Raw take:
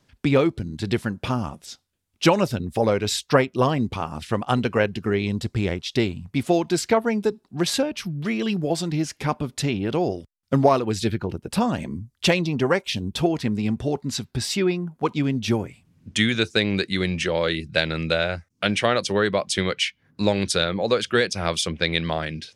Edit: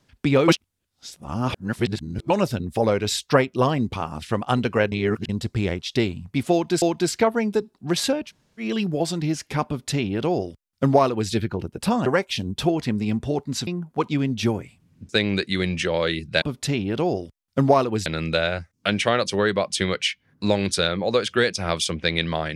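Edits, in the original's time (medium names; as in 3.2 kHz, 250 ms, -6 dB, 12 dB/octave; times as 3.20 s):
0.48–2.30 s: reverse
4.92–5.29 s: reverse
6.52–6.82 s: loop, 2 plays
7.97–8.32 s: room tone, crossfade 0.10 s
9.37–11.01 s: copy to 17.83 s
11.76–12.63 s: delete
14.24–14.72 s: delete
16.14–16.50 s: delete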